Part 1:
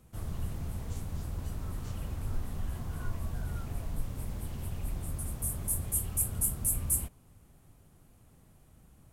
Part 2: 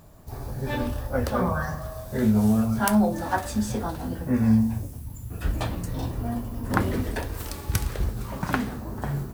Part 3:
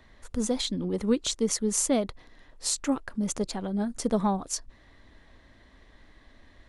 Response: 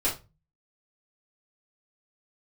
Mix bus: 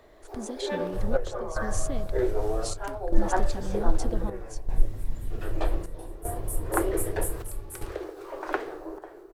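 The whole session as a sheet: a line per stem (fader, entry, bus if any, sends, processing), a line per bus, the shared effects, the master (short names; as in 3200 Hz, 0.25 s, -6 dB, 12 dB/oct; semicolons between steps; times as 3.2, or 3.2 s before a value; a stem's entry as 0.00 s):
-9.5 dB, 0.80 s, send -3.5 dB, reverb removal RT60 1.1 s; low shelf 140 Hz +6.5 dB
-0.5 dB, 0.00 s, no send, steep high-pass 320 Hz 96 dB/oct; tilt -4 dB/oct
-3.5 dB, 0.00 s, no send, compressor, threshold -29 dBFS, peak gain reduction 10.5 dB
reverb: on, RT60 0.25 s, pre-delay 4 ms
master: bell 920 Hz -3 dB 0.58 oct; chopper 0.64 Hz, depth 65%, duty 75%; Doppler distortion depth 0.13 ms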